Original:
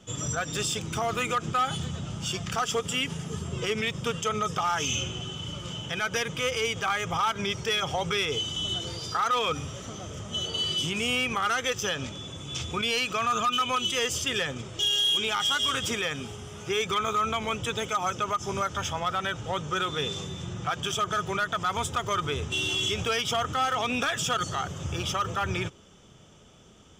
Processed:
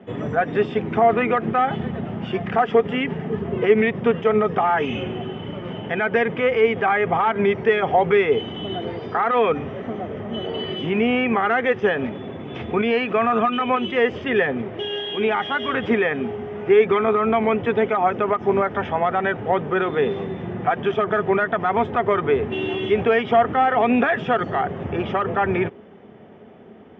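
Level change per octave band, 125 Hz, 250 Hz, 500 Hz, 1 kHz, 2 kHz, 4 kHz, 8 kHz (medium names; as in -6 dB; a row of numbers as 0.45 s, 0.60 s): +3.5 dB, +12.0 dB, +14.0 dB, +7.5 dB, +6.0 dB, -6.5 dB, under -30 dB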